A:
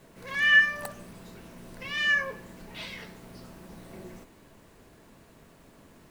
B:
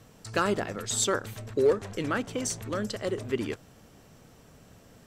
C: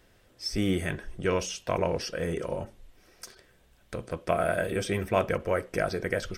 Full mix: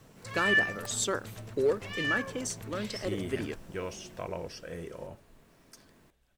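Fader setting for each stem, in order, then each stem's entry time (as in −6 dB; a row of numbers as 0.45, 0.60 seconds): −6.5, −4.0, −10.0 decibels; 0.00, 0.00, 2.50 seconds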